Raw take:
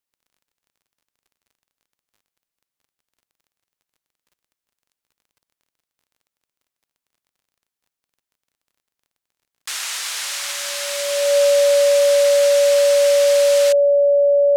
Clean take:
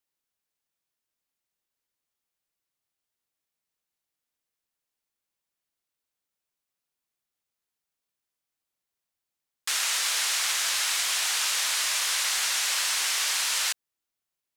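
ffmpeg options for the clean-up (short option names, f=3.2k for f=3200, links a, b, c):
-af "adeclick=t=4,bandreject=f=570:w=30"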